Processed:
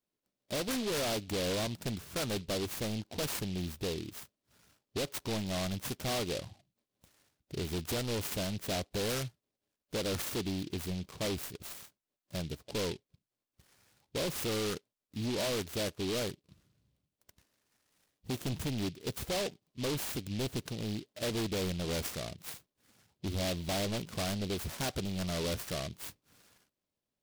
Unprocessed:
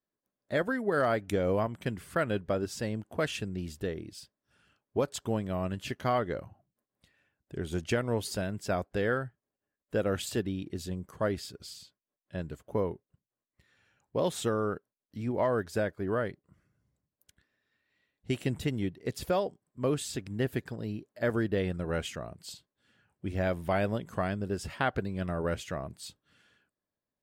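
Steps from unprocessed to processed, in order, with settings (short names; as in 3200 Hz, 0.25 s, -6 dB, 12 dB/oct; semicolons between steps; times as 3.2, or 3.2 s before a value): hard clip -32.5 dBFS, distortion -6 dB; noise-modulated delay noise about 3400 Hz, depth 0.15 ms; gain +1.5 dB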